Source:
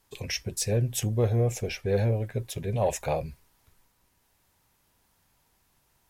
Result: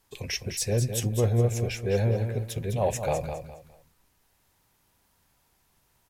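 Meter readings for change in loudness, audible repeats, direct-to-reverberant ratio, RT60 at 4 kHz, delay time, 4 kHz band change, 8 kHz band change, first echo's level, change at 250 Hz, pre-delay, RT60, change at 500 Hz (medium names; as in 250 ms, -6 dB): +0.5 dB, 3, no reverb, no reverb, 206 ms, +0.5 dB, +0.5 dB, -8.0 dB, +1.0 dB, no reverb, no reverb, +0.5 dB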